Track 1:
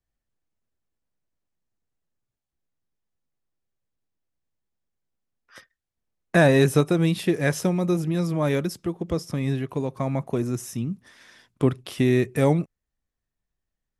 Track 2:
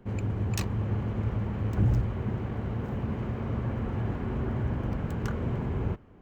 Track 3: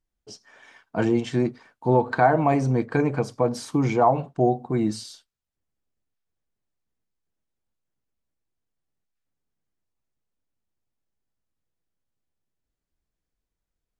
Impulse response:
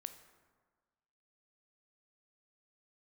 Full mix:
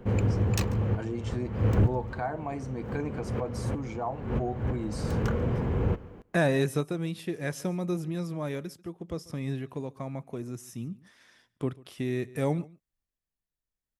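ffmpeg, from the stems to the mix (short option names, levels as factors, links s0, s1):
-filter_complex "[0:a]volume=0.422,asplit=2[s0][s1];[s1]volume=0.075[s2];[1:a]equalizer=f=490:w=7.5:g=9,aeval=exprs='0.251*sin(PI/2*1.78*val(0)/0.251)':c=same,volume=0.75,asplit=2[s3][s4];[s4]volume=0.0841[s5];[2:a]crystalizer=i=1:c=0,volume=0.282,asplit=2[s6][s7];[s7]apad=whole_len=274223[s8];[s3][s8]sidechaincompress=threshold=0.00398:ratio=4:attack=27:release=153[s9];[s2][s5]amix=inputs=2:normalize=0,aecho=0:1:141:1[s10];[s0][s9][s6][s10]amix=inputs=4:normalize=0,tremolo=f=0.63:d=0.37"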